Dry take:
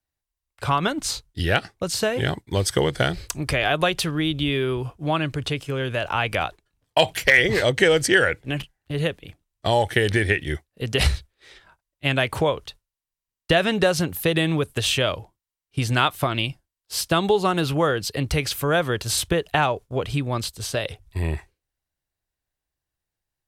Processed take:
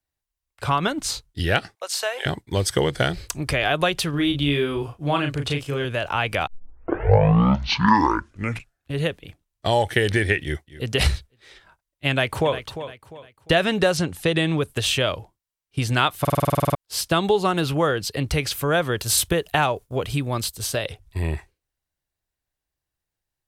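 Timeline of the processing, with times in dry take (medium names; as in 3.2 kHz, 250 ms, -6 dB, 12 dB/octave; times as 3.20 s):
1.75–2.26 s: high-pass 600 Hz 24 dB/octave
4.10–5.85 s: doubling 35 ms -5 dB
6.47 s: tape start 2.55 s
10.42–10.91 s: echo throw 250 ms, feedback 10%, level -16 dB
12.10–12.57 s: echo throw 350 ms, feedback 35%, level -11.5 dB
13.97–14.61 s: low-pass 9.5 kHz 24 dB/octave
16.20 s: stutter in place 0.05 s, 11 plays
18.97–20.77 s: treble shelf 10 kHz +12 dB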